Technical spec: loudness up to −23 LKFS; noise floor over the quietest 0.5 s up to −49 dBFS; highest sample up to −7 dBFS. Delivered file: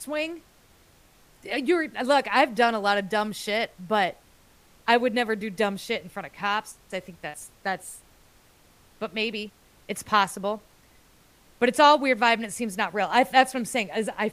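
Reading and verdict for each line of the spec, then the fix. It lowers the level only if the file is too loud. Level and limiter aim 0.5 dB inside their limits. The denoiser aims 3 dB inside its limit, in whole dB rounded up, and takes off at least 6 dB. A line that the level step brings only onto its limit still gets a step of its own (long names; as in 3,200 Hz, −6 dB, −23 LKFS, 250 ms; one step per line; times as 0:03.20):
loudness −24.5 LKFS: in spec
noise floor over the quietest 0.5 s −58 dBFS: in spec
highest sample −4.0 dBFS: out of spec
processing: brickwall limiter −7.5 dBFS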